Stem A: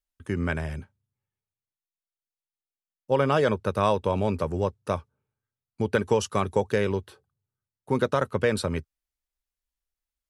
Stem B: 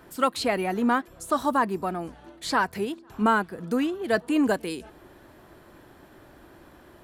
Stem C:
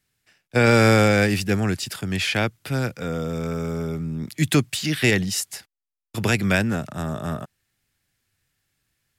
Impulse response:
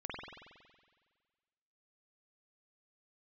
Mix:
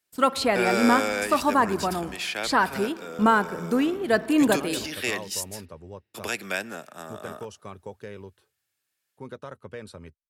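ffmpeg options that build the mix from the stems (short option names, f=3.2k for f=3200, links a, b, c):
-filter_complex "[0:a]adelay=1300,volume=-15.5dB[a];[1:a]agate=range=-44dB:threshold=-41dB:ratio=16:detection=peak,volume=1.5dB,asplit=2[b][c];[c]volume=-16dB[d];[2:a]highpass=400,highshelf=f=8.2k:g=5,bandreject=f=2k:w=19,volume=-7dB,asplit=2[e][f];[f]volume=-24dB[g];[3:a]atrim=start_sample=2205[h];[d][g]amix=inputs=2:normalize=0[i];[i][h]afir=irnorm=-1:irlink=0[j];[a][b][e][j]amix=inputs=4:normalize=0"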